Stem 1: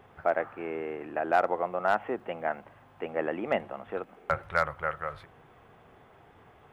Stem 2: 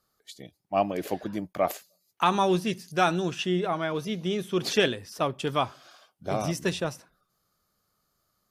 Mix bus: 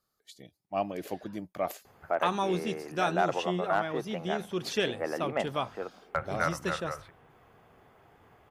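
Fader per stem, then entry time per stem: -3.0 dB, -6.0 dB; 1.85 s, 0.00 s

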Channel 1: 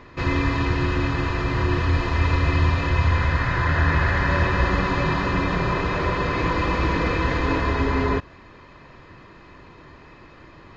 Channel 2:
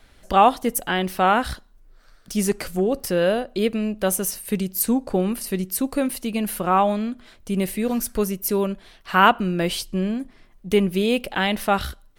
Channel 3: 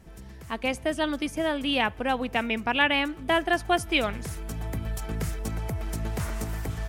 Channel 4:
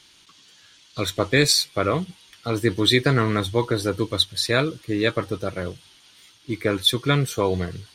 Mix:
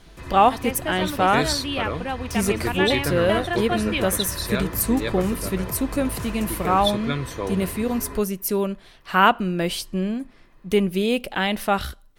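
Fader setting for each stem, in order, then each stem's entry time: -15.0 dB, -1.0 dB, -2.5 dB, -7.0 dB; 0.00 s, 0.00 s, 0.00 s, 0.00 s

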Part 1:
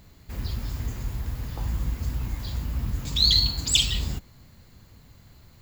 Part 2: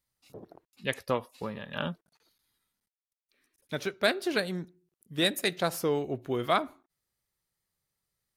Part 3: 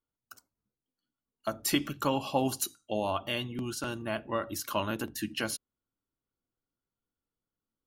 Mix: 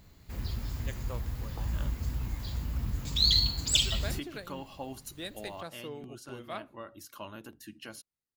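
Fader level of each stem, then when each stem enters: -4.5 dB, -14.5 dB, -12.5 dB; 0.00 s, 0.00 s, 2.45 s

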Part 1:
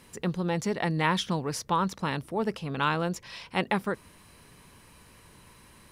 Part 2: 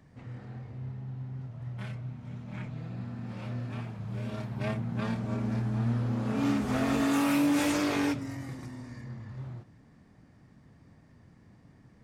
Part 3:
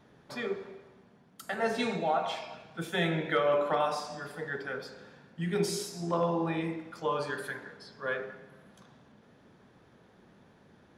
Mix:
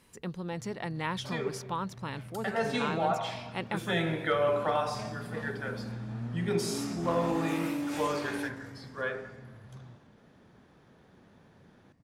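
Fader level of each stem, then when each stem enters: -8.0 dB, -8.5 dB, -0.5 dB; 0.00 s, 0.35 s, 0.95 s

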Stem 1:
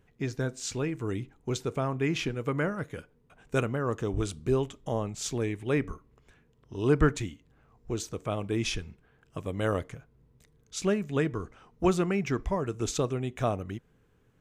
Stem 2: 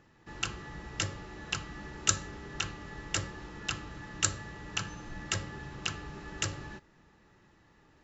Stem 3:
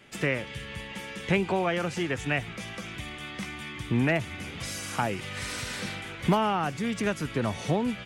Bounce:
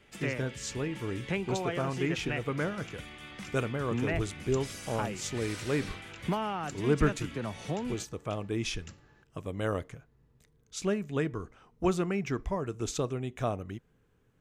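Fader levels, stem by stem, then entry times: -3.0 dB, -19.0 dB, -7.5 dB; 0.00 s, 2.45 s, 0.00 s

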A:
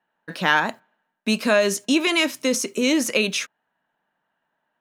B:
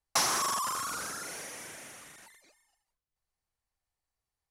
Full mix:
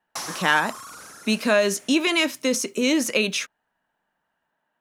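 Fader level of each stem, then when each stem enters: -1.0 dB, -5.0 dB; 0.00 s, 0.00 s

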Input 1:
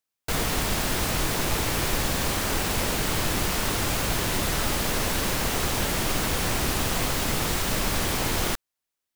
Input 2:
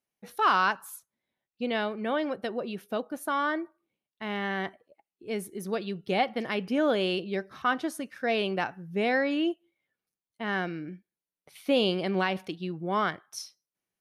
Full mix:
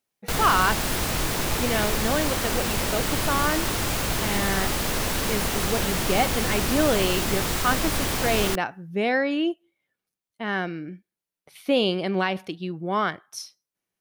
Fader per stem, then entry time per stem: 0.0 dB, +3.0 dB; 0.00 s, 0.00 s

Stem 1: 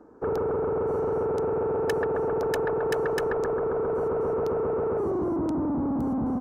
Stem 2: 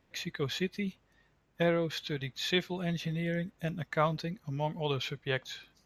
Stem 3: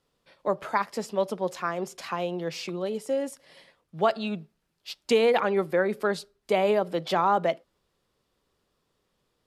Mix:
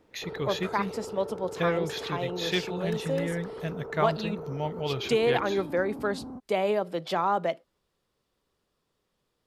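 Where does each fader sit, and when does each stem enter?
-13.0 dB, +1.0 dB, -3.0 dB; 0.00 s, 0.00 s, 0.00 s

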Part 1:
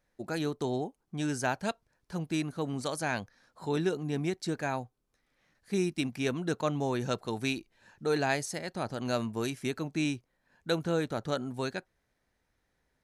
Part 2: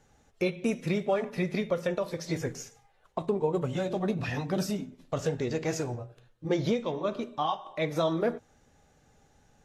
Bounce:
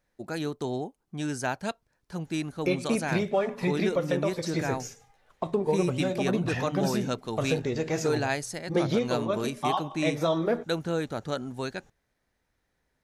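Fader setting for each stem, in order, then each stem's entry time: +0.5 dB, +1.5 dB; 0.00 s, 2.25 s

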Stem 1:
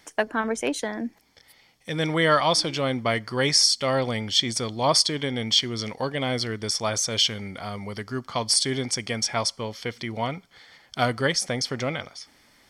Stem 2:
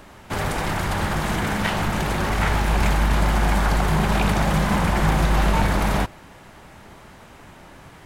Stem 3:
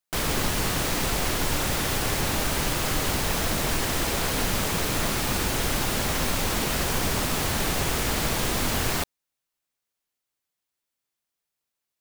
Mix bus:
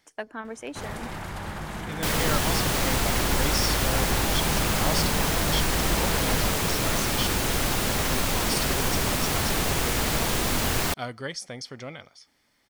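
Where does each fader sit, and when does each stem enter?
-10.5 dB, -11.0 dB, +0.5 dB; 0.00 s, 0.45 s, 1.90 s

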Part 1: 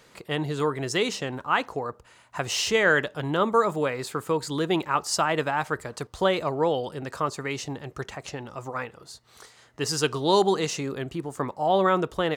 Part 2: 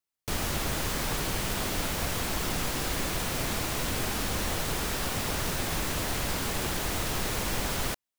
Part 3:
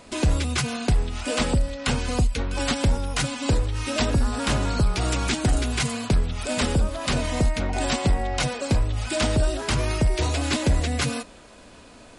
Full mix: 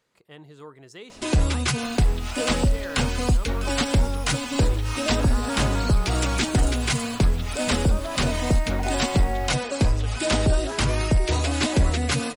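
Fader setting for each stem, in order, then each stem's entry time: -17.5 dB, -16.0 dB, +1.0 dB; 0.00 s, 1.55 s, 1.10 s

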